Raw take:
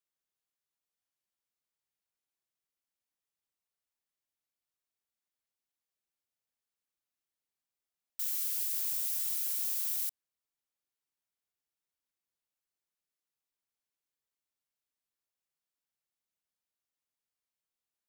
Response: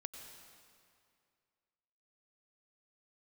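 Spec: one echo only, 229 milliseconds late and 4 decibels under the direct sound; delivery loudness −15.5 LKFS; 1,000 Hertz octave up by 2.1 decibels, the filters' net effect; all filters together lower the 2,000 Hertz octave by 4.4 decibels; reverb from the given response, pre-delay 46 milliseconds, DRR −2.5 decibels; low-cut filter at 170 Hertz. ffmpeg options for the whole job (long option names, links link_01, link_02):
-filter_complex "[0:a]highpass=170,equalizer=frequency=1000:width_type=o:gain=5,equalizer=frequency=2000:width_type=o:gain=-7,aecho=1:1:229:0.631,asplit=2[link_01][link_02];[1:a]atrim=start_sample=2205,adelay=46[link_03];[link_02][link_03]afir=irnorm=-1:irlink=0,volume=5.5dB[link_04];[link_01][link_04]amix=inputs=2:normalize=0,volume=10dB"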